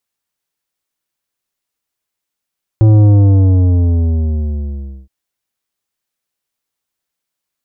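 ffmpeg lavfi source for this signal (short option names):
-f lavfi -i "aevalsrc='0.531*clip((2.27-t)/2.05,0,1)*tanh(3.35*sin(2*PI*110*2.27/log(65/110)*(exp(log(65/110)*t/2.27)-1)))/tanh(3.35)':d=2.27:s=44100"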